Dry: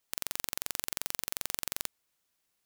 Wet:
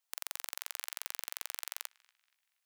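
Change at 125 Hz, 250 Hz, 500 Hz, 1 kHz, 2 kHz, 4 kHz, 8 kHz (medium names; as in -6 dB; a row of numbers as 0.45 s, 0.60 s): under -40 dB, under -30 dB, -11.5 dB, -3.0 dB, -3.0 dB, -4.5 dB, -5.0 dB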